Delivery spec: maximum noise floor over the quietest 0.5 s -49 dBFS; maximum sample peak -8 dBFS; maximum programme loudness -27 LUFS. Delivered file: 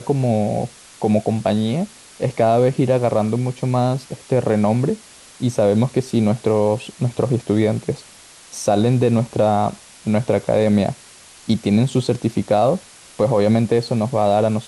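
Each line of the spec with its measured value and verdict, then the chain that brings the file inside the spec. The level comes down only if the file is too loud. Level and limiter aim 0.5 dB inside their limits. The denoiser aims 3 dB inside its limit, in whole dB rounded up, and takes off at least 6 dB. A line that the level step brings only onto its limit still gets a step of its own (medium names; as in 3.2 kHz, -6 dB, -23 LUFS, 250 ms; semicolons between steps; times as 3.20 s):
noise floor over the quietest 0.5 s -44 dBFS: fail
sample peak -5.5 dBFS: fail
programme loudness -19.0 LUFS: fail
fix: trim -8.5 dB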